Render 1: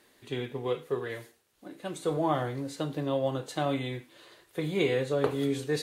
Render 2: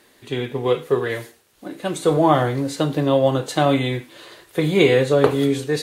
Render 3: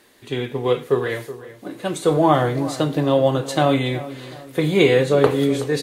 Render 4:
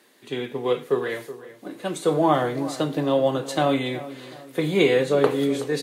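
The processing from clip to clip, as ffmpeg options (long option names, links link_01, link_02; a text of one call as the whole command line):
ffmpeg -i in.wav -af "dynaudnorm=framelen=120:gausssize=9:maxgain=4dB,volume=8dB" out.wav
ffmpeg -i in.wav -filter_complex "[0:a]asplit=2[link_01][link_02];[link_02]adelay=373,lowpass=frequency=2000:poles=1,volume=-15dB,asplit=2[link_03][link_04];[link_04]adelay=373,lowpass=frequency=2000:poles=1,volume=0.42,asplit=2[link_05][link_06];[link_06]adelay=373,lowpass=frequency=2000:poles=1,volume=0.42,asplit=2[link_07][link_08];[link_08]adelay=373,lowpass=frequency=2000:poles=1,volume=0.42[link_09];[link_01][link_03][link_05][link_07][link_09]amix=inputs=5:normalize=0" out.wav
ffmpeg -i in.wav -af "highpass=frequency=150:width=0.5412,highpass=frequency=150:width=1.3066,volume=-3.5dB" out.wav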